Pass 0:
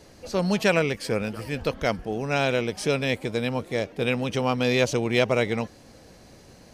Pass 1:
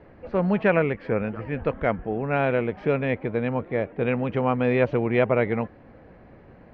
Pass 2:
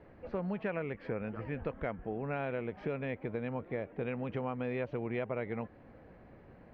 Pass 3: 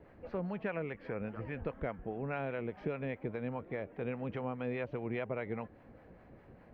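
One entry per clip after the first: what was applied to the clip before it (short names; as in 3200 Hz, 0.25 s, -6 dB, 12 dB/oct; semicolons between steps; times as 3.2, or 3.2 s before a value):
LPF 2100 Hz 24 dB/oct; gain +1.5 dB
compressor 4:1, threshold -27 dBFS, peak gain reduction 11 dB; gain -6.5 dB
harmonic tremolo 4.9 Hz, depth 50%, crossover 620 Hz; gain +1 dB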